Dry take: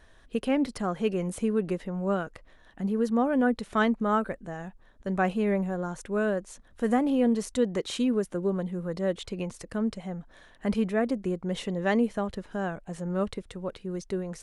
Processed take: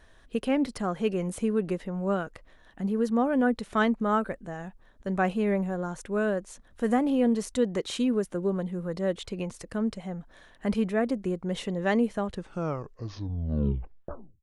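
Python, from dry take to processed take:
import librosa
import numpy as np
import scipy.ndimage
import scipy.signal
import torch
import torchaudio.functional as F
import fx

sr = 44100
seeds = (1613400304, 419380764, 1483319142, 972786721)

y = fx.tape_stop_end(x, sr, length_s=2.15)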